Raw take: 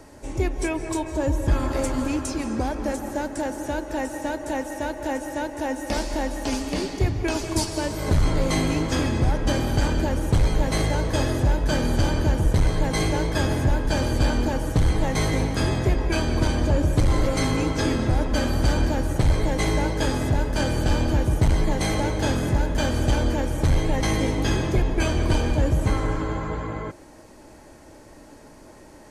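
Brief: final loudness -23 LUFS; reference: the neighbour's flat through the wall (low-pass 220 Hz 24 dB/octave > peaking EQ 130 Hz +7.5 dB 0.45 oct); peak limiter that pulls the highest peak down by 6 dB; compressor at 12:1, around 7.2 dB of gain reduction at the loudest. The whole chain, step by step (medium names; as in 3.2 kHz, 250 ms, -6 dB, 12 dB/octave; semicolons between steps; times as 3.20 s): compression 12:1, threshold -22 dBFS; peak limiter -19.5 dBFS; low-pass 220 Hz 24 dB/octave; peaking EQ 130 Hz +7.5 dB 0.45 oct; trim +8 dB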